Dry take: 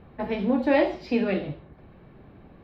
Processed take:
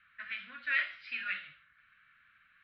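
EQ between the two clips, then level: elliptic high-pass 1.4 kHz, stop band 40 dB; distance through air 440 m; +6.5 dB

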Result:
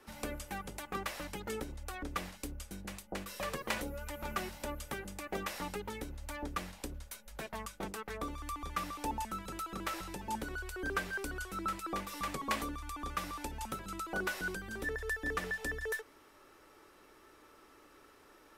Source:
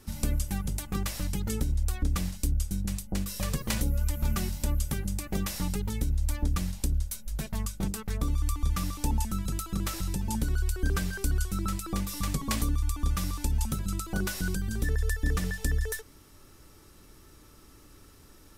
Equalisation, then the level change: three-band isolator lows -21 dB, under 340 Hz, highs -13 dB, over 2.9 kHz; +2.0 dB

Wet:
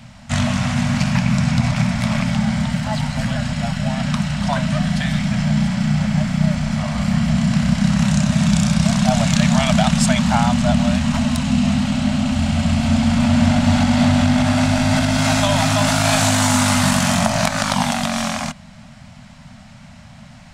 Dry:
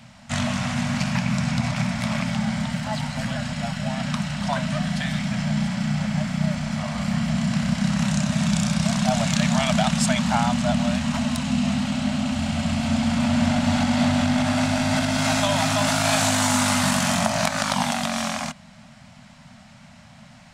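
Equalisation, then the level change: bass shelf 100 Hz +10.5 dB; +3.5 dB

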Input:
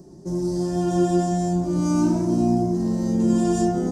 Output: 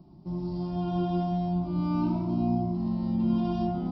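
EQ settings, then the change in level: brick-wall FIR low-pass 5.8 kHz; static phaser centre 1.7 kHz, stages 6; -3.0 dB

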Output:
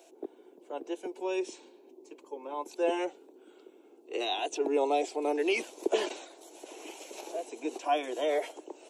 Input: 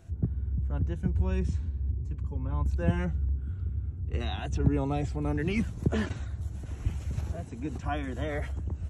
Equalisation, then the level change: steep high-pass 340 Hz 48 dB/octave; high-order bell 1.5 kHz -11.5 dB 1 oct; +7.5 dB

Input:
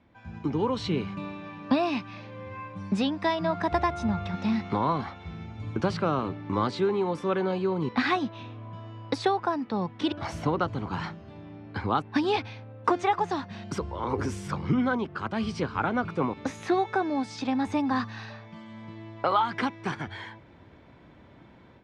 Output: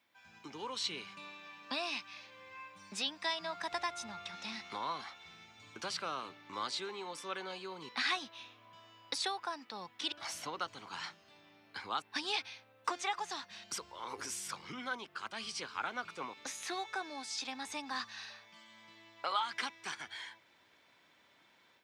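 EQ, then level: differentiator; +6.0 dB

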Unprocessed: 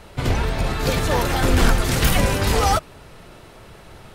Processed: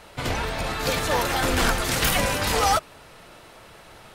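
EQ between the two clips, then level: bass shelf 280 Hz -10.5 dB; band-stop 390 Hz, Q 12; 0.0 dB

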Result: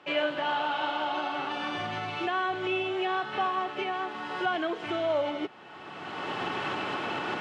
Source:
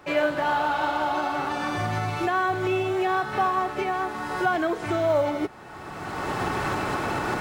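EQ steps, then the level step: band-pass 180–4900 Hz; peaking EQ 3 kHz +11 dB 0.5 oct; -5.5 dB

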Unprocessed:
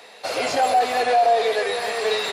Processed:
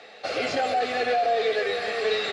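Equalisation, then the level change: dynamic bell 800 Hz, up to -7 dB, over -31 dBFS, Q 1.3; Butterworth band-stop 970 Hz, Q 5.4; distance through air 120 m; 0.0 dB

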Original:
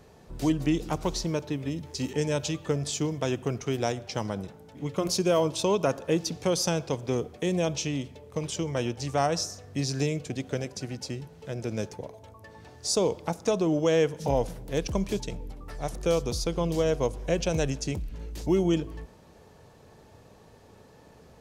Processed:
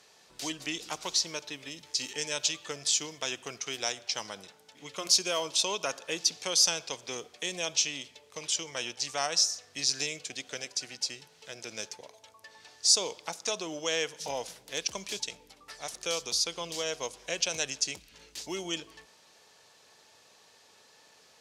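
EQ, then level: band-pass filter 5 kHz, Q 0.78; +7.5 dB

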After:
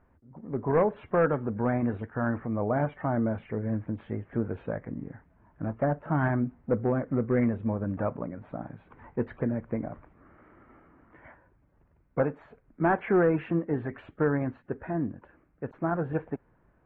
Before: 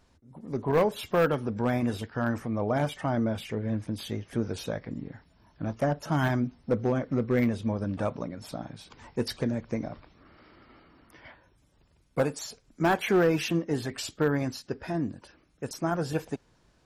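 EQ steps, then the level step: inverse Chebyshev low-pass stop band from 4.8 kHz, stop band 50 dB; 0.0 dB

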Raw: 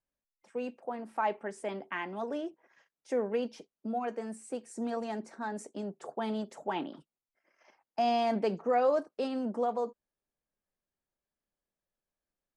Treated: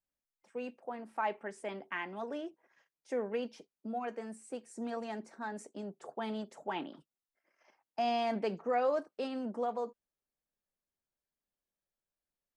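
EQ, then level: dynamic bell 2.2 kHz, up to +4 dB, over -49 dBFS, Q 0.79; -4.5 dB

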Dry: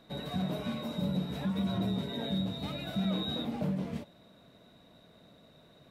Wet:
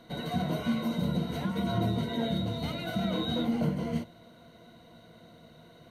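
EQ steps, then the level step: rippled EQ curve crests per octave 1.9, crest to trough 11 dB; +3.5 dB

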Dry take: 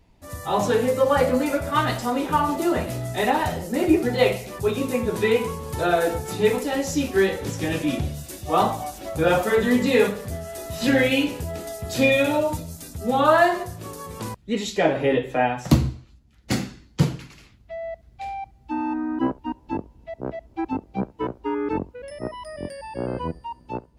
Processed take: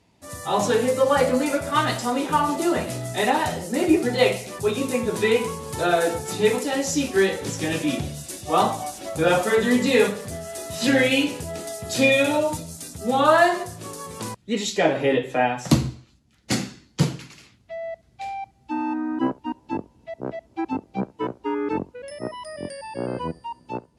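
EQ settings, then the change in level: high-pass 110 Hz 12 dB/octave; low-pass 11 kHz 24 dB/octave; treble shelf 4 kHz +6.5 dB; 0.0 dB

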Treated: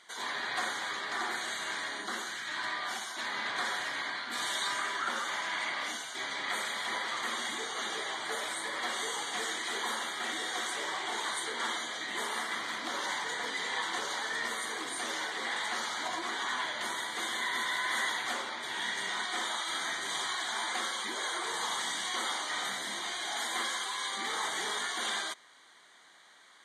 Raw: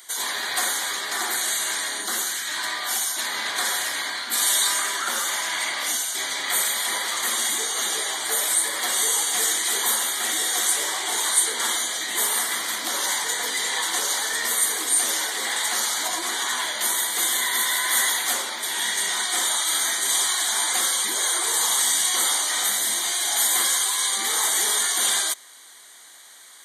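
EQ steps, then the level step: distance through air 80 m; tone controls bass +5 dB, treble -6 dB; peaking EQ 1.2 kHz +2 dB; -6.0 dB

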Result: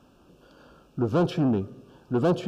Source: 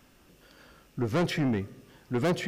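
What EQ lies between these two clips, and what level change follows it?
high-pass 600 Hz 6 dB/octave; Butterworth band-stop 2 kHz, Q 2; tilt EQ -4 dB/octave; +4.5 dB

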